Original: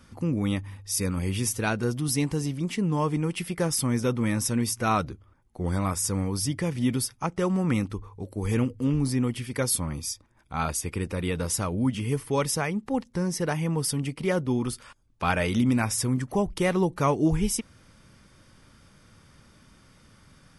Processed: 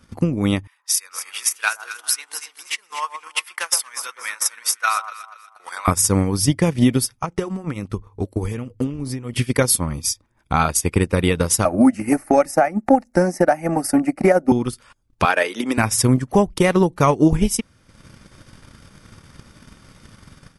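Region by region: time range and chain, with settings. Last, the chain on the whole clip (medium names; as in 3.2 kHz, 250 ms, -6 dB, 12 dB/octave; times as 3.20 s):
0.67–5.88 s: ladder high-pass 970 Hz, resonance 25% + echo whose repeats swap between lows and highs 120 ms, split 1.2 kHz, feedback 58%, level -3 dB
7.19–9.33 s: compression 10:1, threshold -27 dBFS + flange 1.4 Hz, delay 1.5 ms, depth 1.6 ms, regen -67%
11.65–14.52 s: peaking EQ 700 Hz +13.5 dB 1.4 oct + static phaser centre 670 Hz, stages 8 + three bands compressed up and down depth 40%
15.25–15.78 s: high-pass 330 Hz 24 dB/octave + peaking EQ 1.7 kHz +5 dB 0.23 oct
whole clip: level rider gain up to 8 dB; transient shaper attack +11 dB, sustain -9 dB; peak limiter -5 dBFS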